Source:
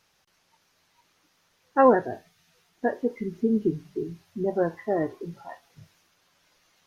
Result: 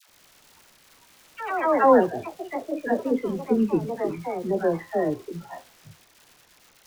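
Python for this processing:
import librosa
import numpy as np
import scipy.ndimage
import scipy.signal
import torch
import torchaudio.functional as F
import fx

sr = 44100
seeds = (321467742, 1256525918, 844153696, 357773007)

y = fx.dmg_crackle(x, sr, seeds[0], per_s=300.0, level_db=-40.0)
y = fx.dispersion(y, sr, late='lows', ms=87.0, hz=820.0)
y = fx.echo_pitch(y, sr, ms=102, semitones=3, count=3, db_per_echo=-6.0)
y = y * librosa.db_to_amplitude(1.5)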